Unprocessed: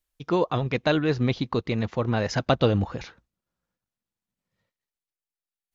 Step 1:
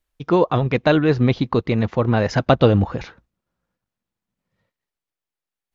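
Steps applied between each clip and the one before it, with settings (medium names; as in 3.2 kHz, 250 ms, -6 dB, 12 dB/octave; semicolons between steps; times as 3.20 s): treble shelf 3.6 kHz -9.5 dB; trim +7 dB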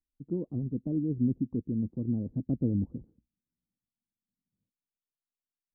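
four-pole ladder low-pass 310 Hz, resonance 50%; trim -5.5 dB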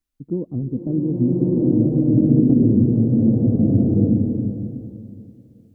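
swelling reverb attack 1370 ms, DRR -8 dB; trim +8 dB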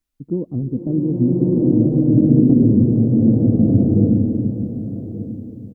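delay 1179 ms -13.5 dB; trim +2 dB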